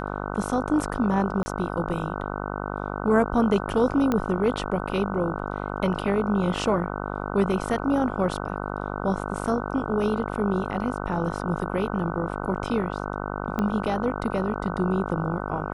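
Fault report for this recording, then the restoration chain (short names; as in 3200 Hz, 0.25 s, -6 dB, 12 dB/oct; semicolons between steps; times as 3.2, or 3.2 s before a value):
buzz 50 Hz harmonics 30 -31 dBFS
1.43–1.46 gap 30 ms
4.12 pop -12 dBFS
13.59 pop -14 dBFS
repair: de-click; de-hum 50 Hz, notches 30; interpolate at 1.43, 30 ms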